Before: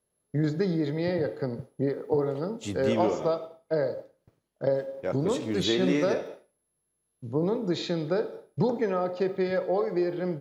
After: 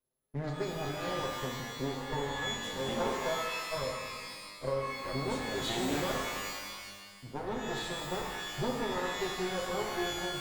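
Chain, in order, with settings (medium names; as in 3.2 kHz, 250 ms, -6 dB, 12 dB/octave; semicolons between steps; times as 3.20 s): comb filter that takes the minimum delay 7.7 ms; pitch-shifted reverb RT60 1.5 s, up +12 st, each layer -2 dB, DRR 3 dB; trim -8 dB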